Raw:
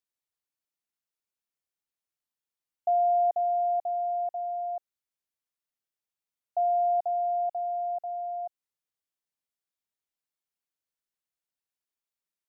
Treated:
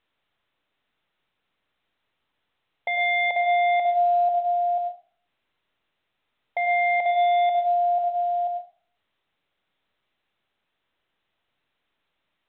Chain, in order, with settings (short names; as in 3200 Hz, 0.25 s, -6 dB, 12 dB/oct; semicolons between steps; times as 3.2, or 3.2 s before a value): wavefolder -26 dBFS; on a send at -6 dB: reverb RT60 0.40 s, pre-delay 60 ms; on the sum: gain +7 dB; µ-law 64 kbps 8000 Hz